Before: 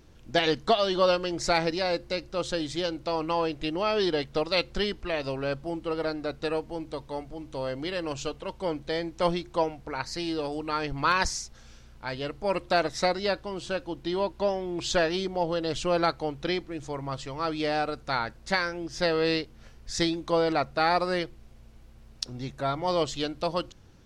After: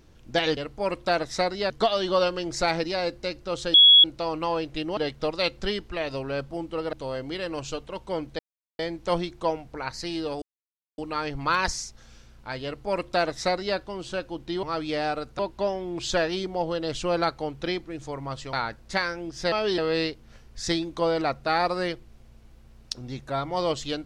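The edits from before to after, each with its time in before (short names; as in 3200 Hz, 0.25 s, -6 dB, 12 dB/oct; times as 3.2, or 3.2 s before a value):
2.61–2.91 bleep 3350 Hz -10 dBFS
3.84–4.1 move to 19.09
6.06–7.46 cut
8.92 insert silence 0.40 s
10.55 insert silence 0.56 s
12.21–13.34 copy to 0.57
17.34–18.1 move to 14.2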